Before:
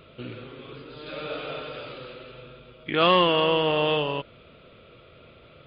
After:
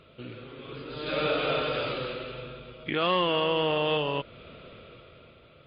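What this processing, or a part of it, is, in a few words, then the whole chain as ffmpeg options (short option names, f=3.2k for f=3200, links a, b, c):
low-bitrate web radio: -af "dynaudnorm=f=210:g=9:m=13dB,alimiter=limit=-12dB:level=0:latency=1:release=308,volume=-4dB" -ar 22050 -c:a libmp3lame -b:a 40k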